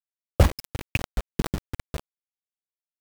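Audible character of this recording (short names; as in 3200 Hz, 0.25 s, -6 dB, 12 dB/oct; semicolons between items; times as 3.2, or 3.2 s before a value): phasing stages 8, 2.2 Hz, lowest notch 170–2300 Hz; a quantiser's noise floor 6-bit, dither none; chopped level 4.9 Hz, depth 65%, duty 25%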